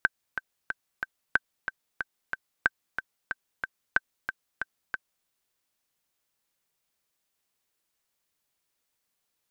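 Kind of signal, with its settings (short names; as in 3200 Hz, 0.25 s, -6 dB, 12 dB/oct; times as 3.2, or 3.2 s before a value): metronome 184 bpm, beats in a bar 4, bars 4, 1550 Hz, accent 9 dB -7.5 dBFS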